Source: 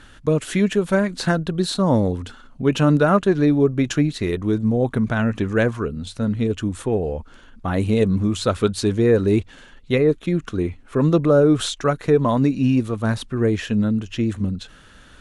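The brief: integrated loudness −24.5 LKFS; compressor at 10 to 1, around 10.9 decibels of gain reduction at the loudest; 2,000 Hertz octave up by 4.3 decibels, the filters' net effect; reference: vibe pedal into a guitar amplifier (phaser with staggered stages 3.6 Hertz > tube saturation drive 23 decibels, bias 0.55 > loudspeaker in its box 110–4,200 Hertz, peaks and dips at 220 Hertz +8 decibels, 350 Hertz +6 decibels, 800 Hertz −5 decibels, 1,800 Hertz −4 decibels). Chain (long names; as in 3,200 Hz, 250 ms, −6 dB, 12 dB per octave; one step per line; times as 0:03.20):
parametric band 2,000 Hz +8.5 dB
downward compressor 10 to 1, threshold −22 dBFS
phaser with staggered stages 3.6 Hz
tube saturation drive 23 dB, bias 0.55
loudspeaker in its box 110–4,200 Hz, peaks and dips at 220 Hz +8 dB, 350 Hz +6 dB, 800 Hz −5 dB, 1,800 Hz −4 dB
level +6.5 dB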